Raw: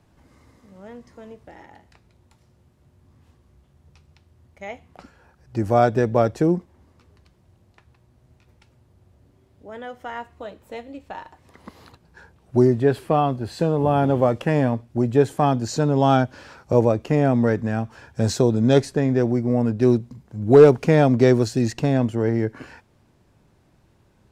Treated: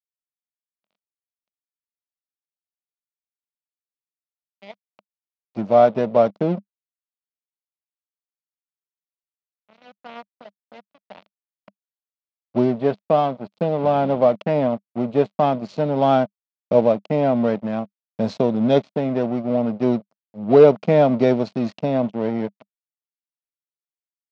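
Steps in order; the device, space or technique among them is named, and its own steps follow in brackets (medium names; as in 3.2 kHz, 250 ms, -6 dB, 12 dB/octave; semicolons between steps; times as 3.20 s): blown loudspeaker (crossover distortion -31 dBFS; cabinet simulation 180–4500 Hz, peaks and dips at 200 Hz +9 dB, 350 Hz -5 dB, 620 Hz +8 dB, 1.7 kHz -8 dB)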